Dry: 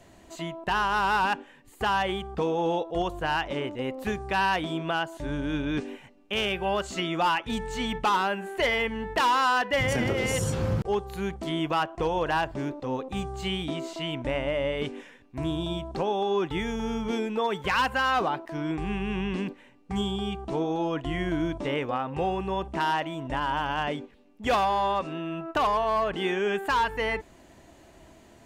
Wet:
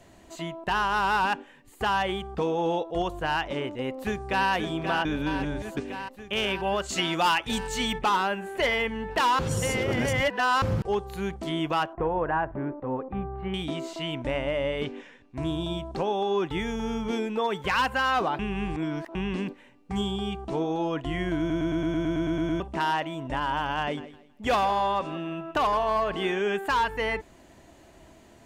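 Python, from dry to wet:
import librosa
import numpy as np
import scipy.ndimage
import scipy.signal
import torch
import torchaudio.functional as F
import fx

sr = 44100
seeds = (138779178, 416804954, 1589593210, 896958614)

y = fx.echo_throw(x, sr, start_s=3.77, length_s=0.72, ms=530, feedback_pct=75, wet_db=-7.0)
y = fx.high_shelf(y, sr, hz=3000.0, db=9.5, at=(6.89, 7.99))
y = fx.lowpass(y, sr, hz=1800.0, slope=24, at=(11.93, 13.54))
y = fx.lowpass(y, sr, hz=fx.line((14.84, 4600.0), (15.44, 11000.0)), slope=12, at=(14.84, 15.44), fade=0.02)
y = fx.echo_feedback(y, sr, ms=162, feedback_pct=26, wet_db=-16.0, at=(23.81, 26.42))
y = fx.edit(y, sr, fx.reverse_span(start_s=5.05, length_s=0.72),
    fx.reverse_span(start_s=9.39, length_s=1.23),
    fx.reverse_span(start_s=18.39, length_s=0.76),
    fx.stutter_over(start_s=21.39, slice_s=0.11, count=11), tone=tone)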